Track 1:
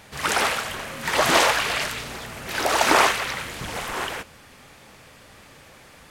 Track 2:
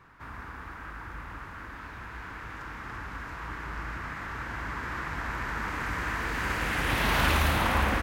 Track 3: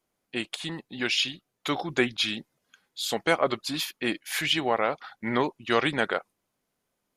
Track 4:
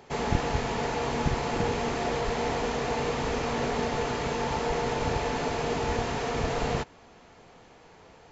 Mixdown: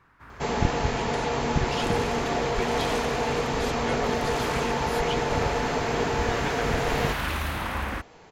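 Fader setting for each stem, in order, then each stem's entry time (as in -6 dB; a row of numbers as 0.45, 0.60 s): -17.0, -4.5, -10.5, +2.5 dB; 1.55, 0.00, 0.60, 0.30 s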